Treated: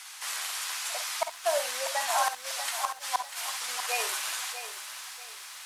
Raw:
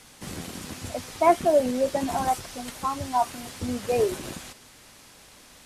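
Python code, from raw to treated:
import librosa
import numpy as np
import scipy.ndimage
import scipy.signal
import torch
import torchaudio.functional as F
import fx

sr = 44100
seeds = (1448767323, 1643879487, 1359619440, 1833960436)

y = scipy.signal.sosfilt(scipy.signal.butter(4, 960.0, 'highpass', fs=sr, output='sos'), x)
y = fx.gate_flip(y, sr, shuts_db=-22.0, range_db=-37)
y = fx.room_early_taps(y, sr, ms=(52, 65), db=(-10.5, -12.5))
y = fx.echo_crushed(y, sr, ms=643, feedback_pct=35, bits=10, wet_db=-10.0)
y = y * 10.0 ** (7.0 / 20.0)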